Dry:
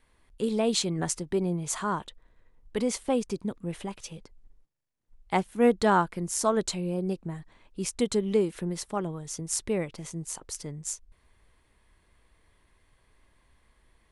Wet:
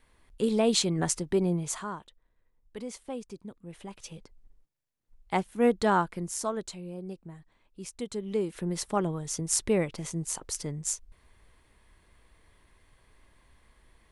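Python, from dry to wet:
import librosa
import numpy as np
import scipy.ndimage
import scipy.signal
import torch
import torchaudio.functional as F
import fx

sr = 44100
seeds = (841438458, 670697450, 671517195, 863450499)

y = fx.gain(x, sr, db=fx.line((1.58, 1.5), (2.02, -11.0), (3.66, -11.0), (4.1, -2.0), (6.21, -2.0), (6.67, -9.5), (8.11, -9.5), (8.85, 3.0)))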